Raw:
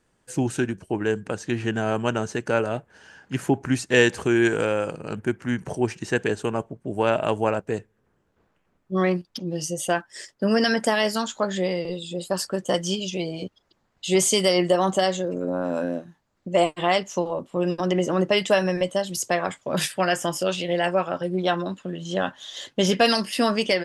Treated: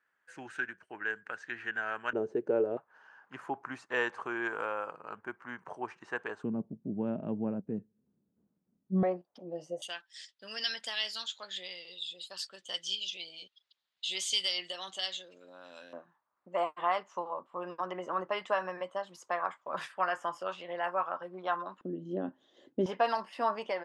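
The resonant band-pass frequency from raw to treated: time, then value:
resonant band-pass, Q 3.1
1,600 Hz
from 0:02.13 410 Hz
from 0:02.77 1,100 Hz
from 0:06.44 210 Hz
from 0:09.03 660 Hz
from 0:09.82 3,600 Hz
from 0:15.93 1,100 Hz
from 0:21.81 300 Hz
from 0:22.86 940 Hz

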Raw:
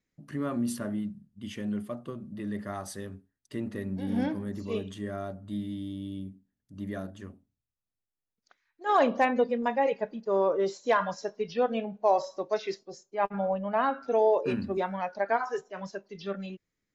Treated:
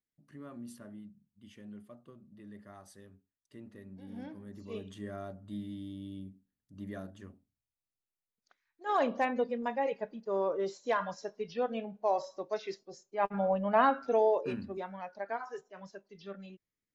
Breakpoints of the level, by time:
0:04.23 −15.5 dB
0:04.99 −6 dB
0:12.78 −6 dB
0:13.83 +2 dB
0:14.78 −10 dB

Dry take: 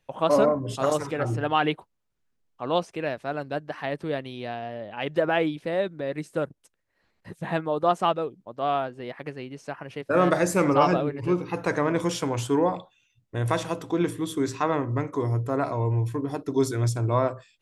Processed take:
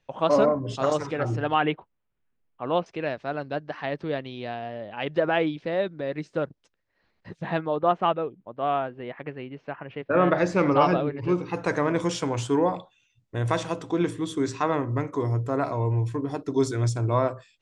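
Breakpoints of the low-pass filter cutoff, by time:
low-pass filter 24 dB per octave
6,600 Hz
from 0:01.54 3,100 Hz
from 0:02.86 5,600 Hz
from 0:07.76 3,100 Hz
from 0:10.38 5,000 Hz
from 0:11.29 8,500 Hz

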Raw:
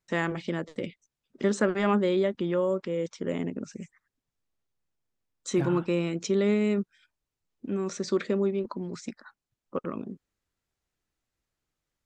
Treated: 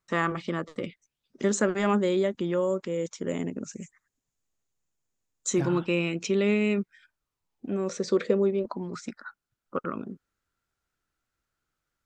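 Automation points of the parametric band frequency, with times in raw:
parametric band +12 dB 0.33 octaves
0:00.85 1,200 Hz
0:01.43 6,900 Hz
0:05.53 6,900 Hz
0:05.93 2,600 Hz
0:06.71 2,600 Hz
0:07.96 490 Hz
0:08.56 490 Hz
0:08.99 1,400 Hz

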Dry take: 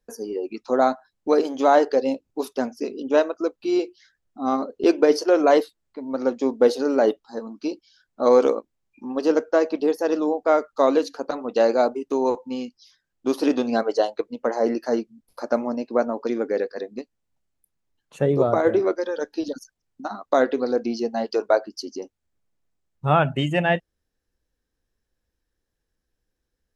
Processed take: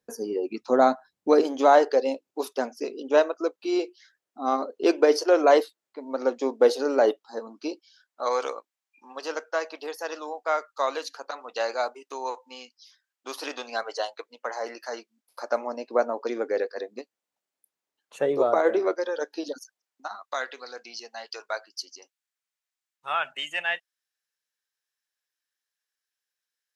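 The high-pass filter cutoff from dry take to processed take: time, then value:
0:01.30 120 Hz
0:01.76 390 Hz
0:07.70 390 Hz
0:08.29 1,000 Hz
0:14.97 1,000 Hz
0:15.96 440 Hz
0:19.55 440 Hz
0:20.37 1,500 Hz

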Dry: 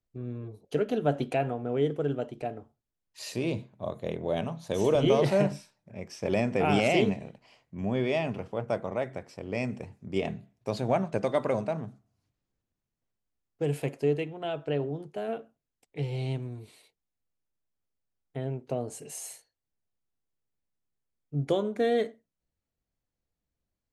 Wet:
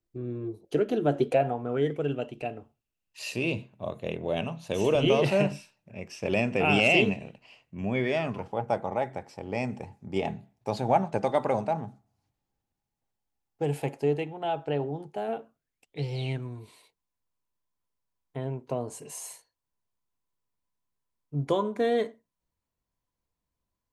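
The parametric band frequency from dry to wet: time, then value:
parametric band +14.5 dB 0.21 octaves
0:01.16 340 Hz
0:02.04 2,700 Hz
0:07.87 2,700 Hz
0:08.46 830 Hz
0:15.39 830 Hz
0:16.12 5,600 Hz
0:16.46 1,000 Hz

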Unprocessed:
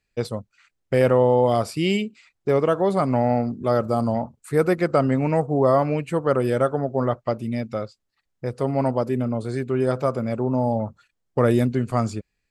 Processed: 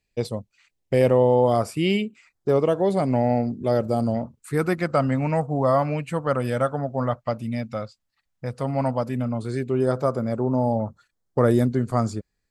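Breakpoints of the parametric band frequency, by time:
parametric band −11 dB 0.54 octaves
0:01.31 1,400 Hz
0:01.92 7,500 Hz
0:02.77 1,200 Hz
0:03.91 1,200 Hz
0:04.93 380 Hz
0:09.32 380 Hz
0:09.87 2,600 Hz

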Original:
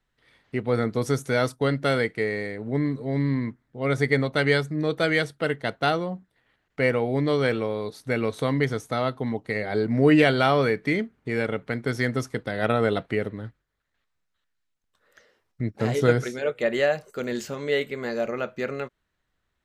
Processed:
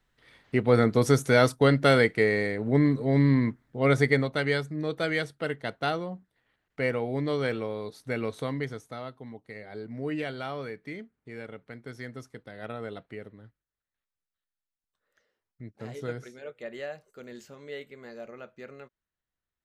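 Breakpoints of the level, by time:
0:03.84 +3 dB
0:04.43 −5.5 dB
0:08.32 −5.5 dB
0:09.17 −15 dB

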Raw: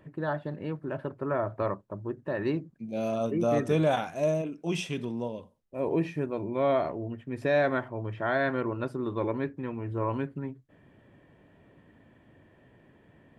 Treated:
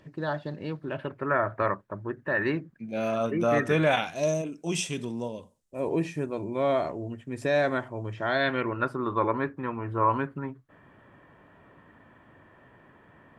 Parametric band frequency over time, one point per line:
parametric band +13 dB 1.2 octaves
0:00.65 5,200 Hz
0:01.31 1,700 Hz
0:03.82 1,700 Hz
0:04.43 7,800 Hz
0:08.09 7,800 Hz
0:08.92 1,200 Hz

